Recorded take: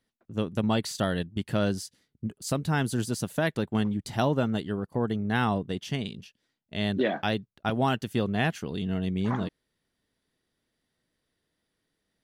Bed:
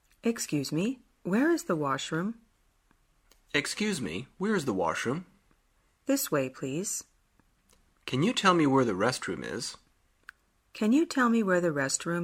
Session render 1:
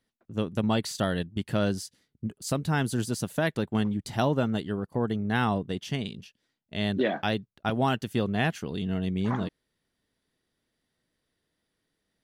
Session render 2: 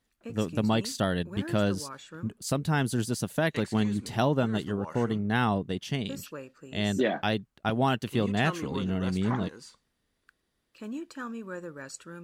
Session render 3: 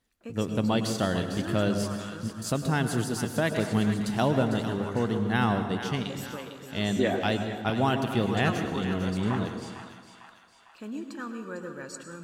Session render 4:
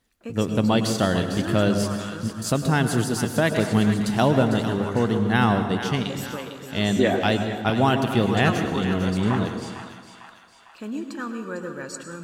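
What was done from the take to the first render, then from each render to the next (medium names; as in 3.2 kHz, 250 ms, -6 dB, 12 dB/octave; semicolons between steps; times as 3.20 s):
no audible change
add bed -13 dB
two-band feedback delay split 800 Hz, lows 141 ms, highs 452 ms, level -10 dB; plate-style reverb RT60 1.2 s, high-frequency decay 0.75×, pre-delay 90 ms, DRR 8.5 dB
trim +5.5 dB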